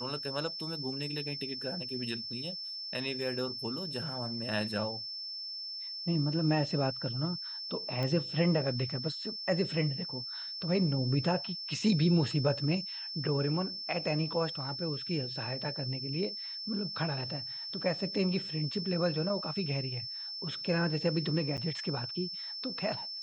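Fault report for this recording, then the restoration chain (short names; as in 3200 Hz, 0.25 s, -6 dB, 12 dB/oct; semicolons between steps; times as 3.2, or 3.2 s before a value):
tone 5300 Hz -38 dBFS
8.03 pop -22 dBFS
21.57–21.58 gap 7.9 ms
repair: de-click; notch 5300 Hz, Q 30; interpolate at 21.57, 7.9 ms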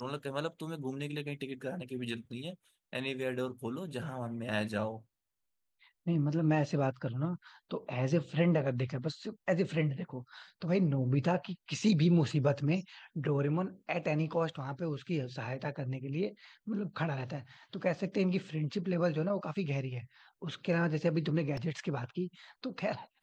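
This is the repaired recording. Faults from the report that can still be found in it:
none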